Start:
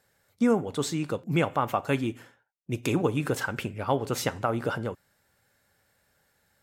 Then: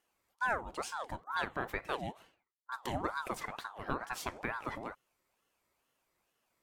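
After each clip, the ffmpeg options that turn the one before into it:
-af "aeval=exprs='val(0)*sin(2*PI*850*n/s+850*0.5/2.2*sin(2*PI*2.2*n/s))':c=same,volume=-8dB"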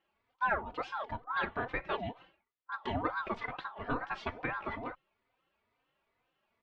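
-filter_complex "[0:a]lowpass=f=3.6k:w=0.5412,lowpass=f=3.6k:w=1.3066,asplit=2[a][b];[b]adelay=3.3,afreqshift=2.2[c];[a][c]amix=inputs=2:normalize=1,volume=5dB"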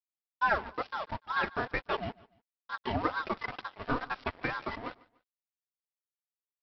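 -af "aresample=11025,aeval=exprs='sgn(val(0))*max(abs(val(0))-0.00562,0)':c=same,aresample=44100,aecho=1:1:147|294:0.075|0.027,volume=4.5dB"

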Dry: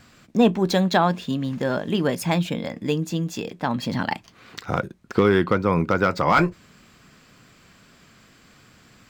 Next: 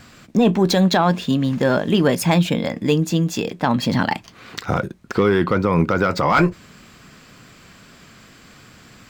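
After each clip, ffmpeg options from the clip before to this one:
-af "alimiter=limit=-13dB:level=0:latency=1:release=26,acontrast=74"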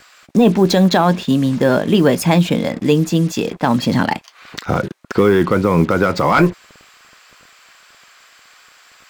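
-filter_complex "[0:a]equalizer=f=350:w=0.61:g=3,acrossover=split=700[a][b];[a]acrusher=bits=5:mix=0:aa=0.5[c];[c][b]amix=inputs=2:normalize=0,volume=1.5dB"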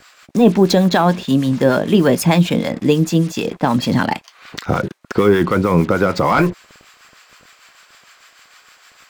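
-filter_complex "[0:a]acrossover=split=830[a][b];[a]aeval=exprs='val(0)*(1-0.5/2+0.5/2*cos(2*PI*6.6*n/s))':c=same[c];[b]aeval=exprs='val(0)*(1-0.5/2-0.5/2*cos(2*PI*6.6*n/s))':c=same[d];[c][d]amix=inputs=2:normalize=0,volume=2dB"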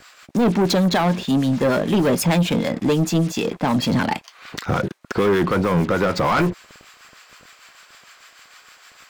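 -af "asoftclip=type=tanh:threshold=-13dB"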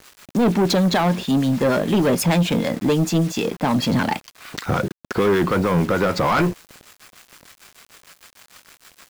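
-af "acrusher=bits=6:mix=0:aa=0.000001"

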